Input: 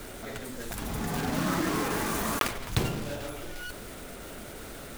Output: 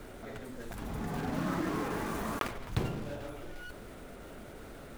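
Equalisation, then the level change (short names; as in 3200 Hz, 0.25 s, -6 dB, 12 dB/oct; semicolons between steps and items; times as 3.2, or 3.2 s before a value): high shelf 2700 Hz -10.5 dB; -4.0 dB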